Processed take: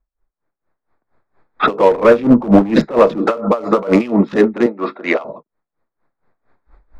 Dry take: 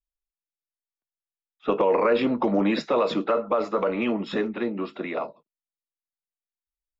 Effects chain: local Wiener filter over 15 samples; recorder AGC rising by 19 dB/s; 4.66–5.25 s: high-pass 800 Hz 6 dB/octave; level-controlled noise filter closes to 1.9 kHz, open at -21 dBFS; 1.91–3.18 s: tilt EQ -2.5 dB/octave; hard clipper -14.5 dBFS, distortion -17 dB; loudness maximiser +22.5 dB; logarithmic tremolo 4.3 Hz, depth 19 dB

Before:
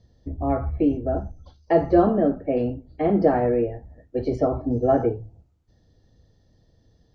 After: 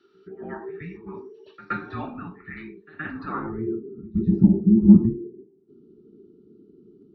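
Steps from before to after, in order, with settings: dynamic bell 4 kHz, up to +6 dB, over -48 dBFS, Q 1.3; in parallel at +3 dB: compression, threshold -34 dBFS, peak gain reduction 20.5 dB; on the sum: frequency shift -460 Hz; band-pass sweep 1.6 kHz -> 220 Hz, 3.30–3.82 s; pre-echo 121 ms -18 dB; trim +7.5 dB

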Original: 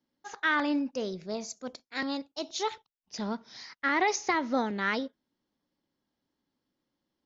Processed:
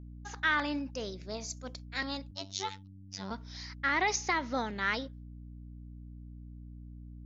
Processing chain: tilt shelf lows -4 dB, about 840 Hz; expander -49 dBFS; hum 60 Hz, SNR 10 dB; 2.31–3.31 s: robot voice 96.6 Hz; trim -3.5 dB

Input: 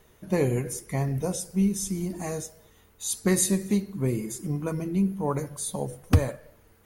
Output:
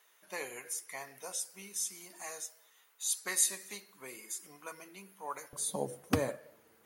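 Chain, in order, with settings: high-pass 1.1 kHz 12 dB/octave, from 5.53 s 230 Hz; trim -3 dB

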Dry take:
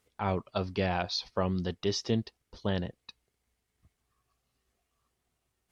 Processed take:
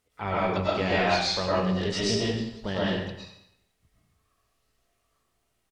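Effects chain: dynamic bell 2.1 kHz, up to +6 dB, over -49 dBFS, Q 1.3; algorithmic reverb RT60 0.8 s, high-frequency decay 0.95×, pre-delay 75 ms, DRR -7.5 dB; harmony voices -12 st -17 dB, +7 st -15 dB; trim -2.5 dB

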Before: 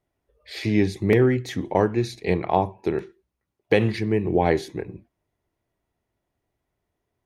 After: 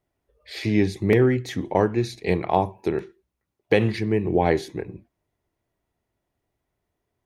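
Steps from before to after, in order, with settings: 2.25–2.88 s: treble shelf 7.3 kHz +8.5 dB

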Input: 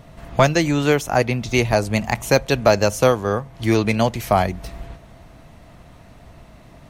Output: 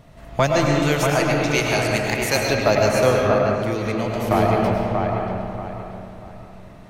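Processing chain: 0.82–2.43 s: tilt shelf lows -5.5 dB, about 1.4 kHz; feedback echo behind a low-pass 635 ms, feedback 30%, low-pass 2.6 kHz, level -4 dB; algorithmic reverb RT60 2.4 s, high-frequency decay 0.5×, pre-delay 65 ms, DRR -0.5 dB; 3.54–4.31 s: compression, threshold -16 dBFS, peak gain reduction 7 dB; trim -4 dB

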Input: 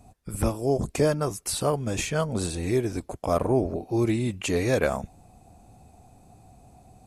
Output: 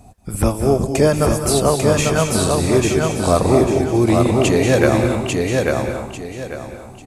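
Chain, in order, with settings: feedback delay 845 ms, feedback 29%, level -3 dB; on a send at -6 dB: reverberation RT60 0.70 s, pre-delay 173 ms; on the sum: trim +8 dB

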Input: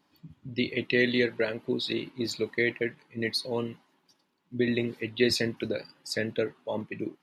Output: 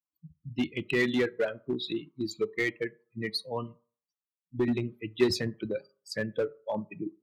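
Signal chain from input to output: expander on every frequency bin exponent 2; treble shelf 3.1 kHz -8.5 dB; reverberation RT60 0.40 s, pre-delay 3 ms, DRR 16.5 dB; in parallel at -6.5 dB: wavefolder -28.5 dBFS; on the sum: trim +1.5 dB

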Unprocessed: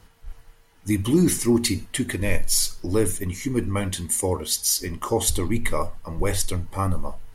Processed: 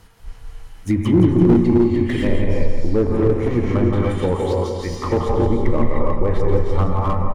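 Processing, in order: 3.05–3.55 s: cycle switcher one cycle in 2, muted; gated-style reverb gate 330 ms rising, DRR -1 dB; low-pass that closes with the level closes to 960 Hz, closed at -16 dBFS; feedback delay 170 ms, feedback 46%, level -7 dB; slew-rate limiter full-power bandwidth 72 Hz; trim +3.5 dB

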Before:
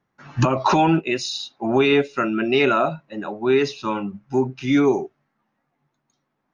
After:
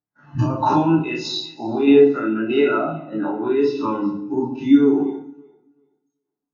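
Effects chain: every event in the spectrogram widened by 60 ms; band-stop 2.3 kHz, Q 8.1; peak limiter -9 dBFS, peak gain reduction 6.5 dB; compression 1.5:1, threshold -25 dBFS, peak gain reduction 4.5 dB; echo whose repeats swap between lows and highs 191 ms, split 1.4 kHz, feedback 53%, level -10.5 dB; tremolo saw down 1.6 Hz, depth 40%; FDN reverb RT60 0.79 s, low-frequency decay 1.45×, high-frequency decay 0.9×, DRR 1.5 dB; spectral contrast expander 1.5:1; trim +5 dB

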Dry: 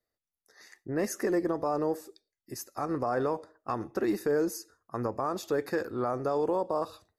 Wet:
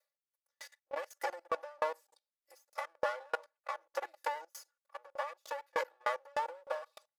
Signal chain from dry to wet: comb filter that takes the minimum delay 3.5 ms; elliptic high-pass 480 Hz, stop band 50 dB; comb 3.5 ms, depth 74%; level held to a coarse grid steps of 18 dB; sawtooth tremolo in dB decaying 3.3 Hz, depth 37 dB; trim +8.5 dB

